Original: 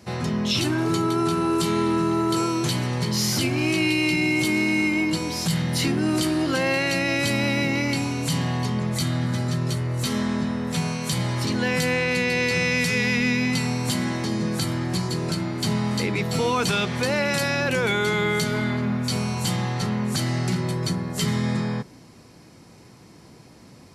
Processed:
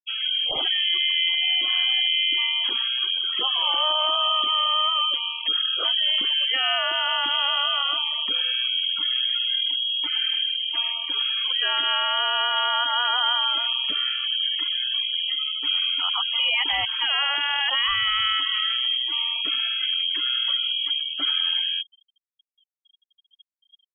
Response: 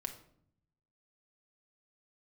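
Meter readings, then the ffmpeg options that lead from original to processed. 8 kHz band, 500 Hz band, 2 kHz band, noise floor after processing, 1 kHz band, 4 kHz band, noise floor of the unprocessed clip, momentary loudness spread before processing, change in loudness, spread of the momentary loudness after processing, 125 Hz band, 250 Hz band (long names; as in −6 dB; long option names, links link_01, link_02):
below −40 dB, −13.0 dB, −2.0 dB, below −85 dBFS, +1.5 dB, +12.5 dB, −48 dBFS, 5 LU, +2.5 dB, 3 LU, below −35 dB, below −25 dB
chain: -af "lowpass=frequency=2900:width_type=q:width=0.5098,lowpass=frequency=2900:width_type=q:width=0.6013,lowpass=frequency=2900:width_type=q:width=0.9,lowpass=frequency=2900:width_type=q:width=2.563,afreqshift=-3400,afftfilt=real='re*gte(hypot(re,im),0.0398)':imag='im*gte(hypot(re,im),0.0398)':win_size=1024:overlap=0.75"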